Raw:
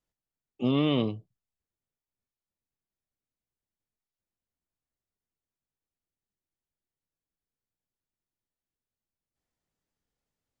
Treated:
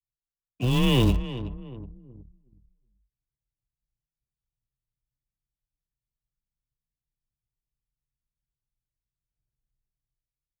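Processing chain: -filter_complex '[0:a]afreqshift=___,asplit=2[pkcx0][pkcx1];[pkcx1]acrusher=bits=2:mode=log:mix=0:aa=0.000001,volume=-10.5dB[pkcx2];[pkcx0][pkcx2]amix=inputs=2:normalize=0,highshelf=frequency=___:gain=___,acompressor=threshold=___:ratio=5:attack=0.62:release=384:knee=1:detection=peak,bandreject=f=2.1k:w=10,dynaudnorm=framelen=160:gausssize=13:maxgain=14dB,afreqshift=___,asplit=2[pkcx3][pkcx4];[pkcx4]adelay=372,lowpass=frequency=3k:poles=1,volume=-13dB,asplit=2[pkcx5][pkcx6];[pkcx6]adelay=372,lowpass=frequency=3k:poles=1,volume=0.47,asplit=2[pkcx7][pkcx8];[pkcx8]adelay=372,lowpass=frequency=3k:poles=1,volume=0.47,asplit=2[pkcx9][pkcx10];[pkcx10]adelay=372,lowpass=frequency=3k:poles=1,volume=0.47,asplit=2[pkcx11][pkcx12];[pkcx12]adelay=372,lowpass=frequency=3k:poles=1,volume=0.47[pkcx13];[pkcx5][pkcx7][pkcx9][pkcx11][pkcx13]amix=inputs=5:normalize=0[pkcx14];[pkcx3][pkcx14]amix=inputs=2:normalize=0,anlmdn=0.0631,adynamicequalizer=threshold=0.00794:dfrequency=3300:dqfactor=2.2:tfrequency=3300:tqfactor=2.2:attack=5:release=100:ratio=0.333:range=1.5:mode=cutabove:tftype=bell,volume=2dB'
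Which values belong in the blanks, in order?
-140, 2.6k, 6, -24dB, 18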